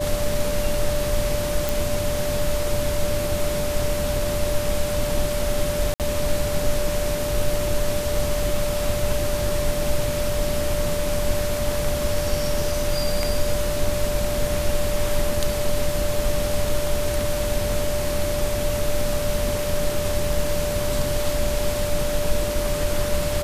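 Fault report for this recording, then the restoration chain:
whistle 590 Hz −25 dBFS
0:01.69: click
0:05.94–0:06.00: drop-out 58 ms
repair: click removal
notch filter 590 Hz, Q 30
repair the gap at 0:05.94, 58 ms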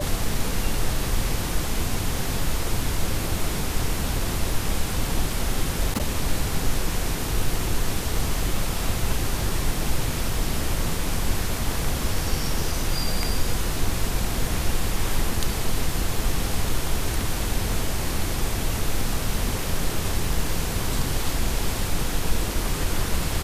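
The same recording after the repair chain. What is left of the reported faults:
none of them is left

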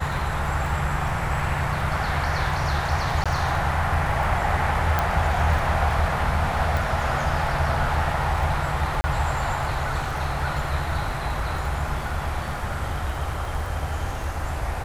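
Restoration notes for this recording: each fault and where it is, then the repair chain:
surface crackle 27 per second −31 dBFS
0:03.24–0:03.26: drop-out 16 ms
0:04.99: click
0:06.77: click
0:09.01–0:09.04: drop-out 30 ms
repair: click removal
repair the gap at 0:03.24, 16 ms
repair the gap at 0:09.01, 30 ms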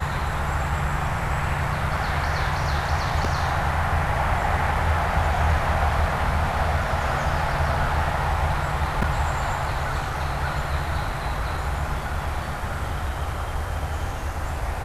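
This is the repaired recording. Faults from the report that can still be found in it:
0:04.99: click

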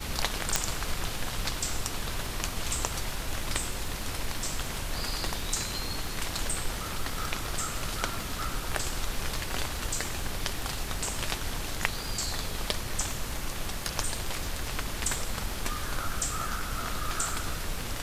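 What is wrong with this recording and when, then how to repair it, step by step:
surface crackle 35 per second −35 dBFS
0:00.56: click −5 dBFS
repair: click removal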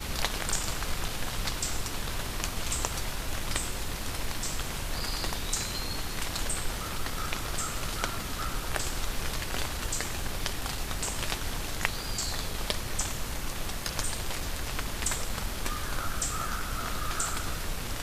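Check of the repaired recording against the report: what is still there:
none of them is left

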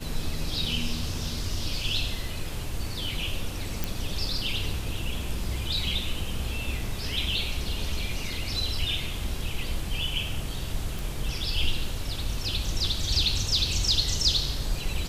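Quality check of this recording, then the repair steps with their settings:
0:03.84: click
0:10.99: click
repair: click removal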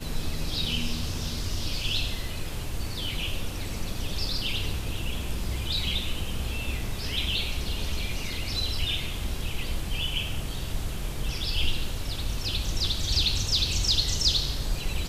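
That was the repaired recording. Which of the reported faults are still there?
none of them is left

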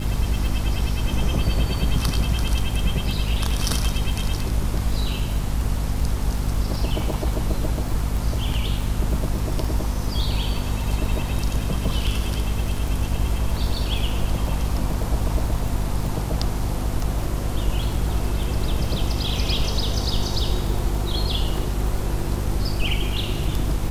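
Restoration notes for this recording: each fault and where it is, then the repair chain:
surface crackle 33 per second −27 dBFS
mains hum 50 Hz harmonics 5 −26 dBFS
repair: click removal
hum removal 50 Hz, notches 5

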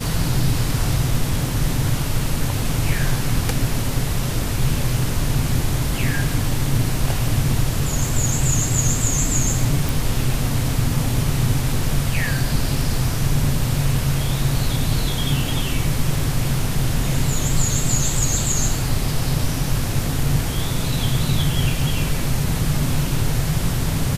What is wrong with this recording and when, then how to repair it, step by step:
0:09.89: click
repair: click removal

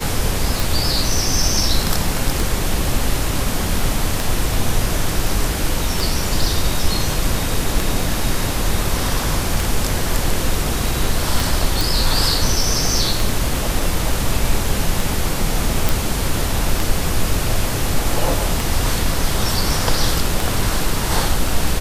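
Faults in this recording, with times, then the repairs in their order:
scratch tick 33 1/3 rpm
0:11.81: click
0:15.89: click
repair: click removal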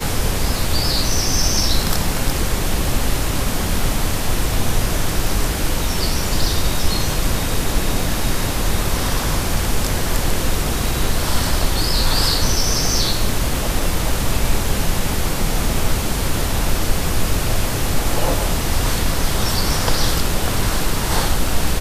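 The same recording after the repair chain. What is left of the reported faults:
none of them is left

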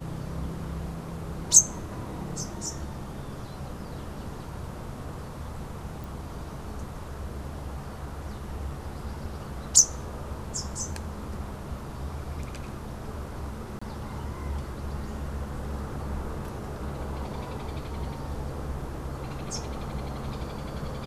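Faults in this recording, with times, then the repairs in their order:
0:06.04: click
0:13.79–0:13.81: drop-out 25 ms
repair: click removal
repair the gap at 0:13.79, 25 ms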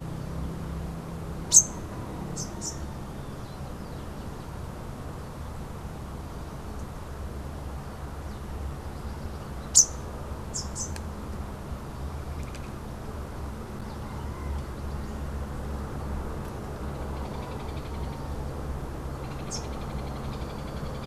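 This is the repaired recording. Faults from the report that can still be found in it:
none of them is left

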